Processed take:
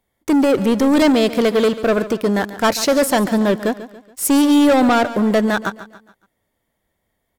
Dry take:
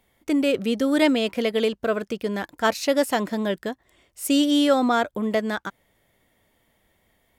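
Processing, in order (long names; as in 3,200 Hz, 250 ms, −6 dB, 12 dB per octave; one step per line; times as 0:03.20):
parametric band 2,700 Hz −6 dB 0.76 octaves
leveller curve on the samples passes 3
on a send: repeating echo 141 ms, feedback 42%, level −14.5 dB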